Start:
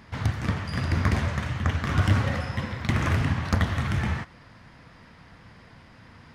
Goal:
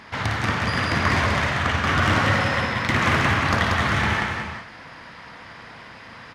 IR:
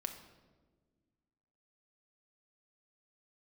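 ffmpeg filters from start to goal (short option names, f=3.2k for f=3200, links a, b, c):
-filter_complex "[0:a]asplit=2[a][b];[b]highpass=f=720:p=1,volume=16dB,asoftclip=type=tanh:threshold=-9dB[c];[a][c]amix=inputs=2:normalize=0,lowpass=f=4.6k:p=1,volume=-6dB,aecho=1:1:56|185|364|401:0.473|0.708|0.335|0.237"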